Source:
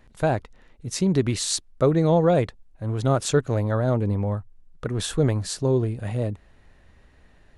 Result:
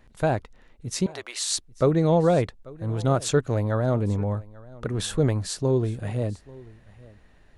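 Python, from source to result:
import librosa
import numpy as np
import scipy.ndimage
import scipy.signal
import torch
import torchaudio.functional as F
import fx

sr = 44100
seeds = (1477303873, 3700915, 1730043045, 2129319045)

p1 = fx.highpass(x, sr, hz=610.0, slope=24, at=(1.06, 1.51))
p2 = p1 + fx.echo_single(p1, sr, ms=840, db=-22.0, dry=0)
y = p2 * 10.0 ** (-1.0 / 20.0)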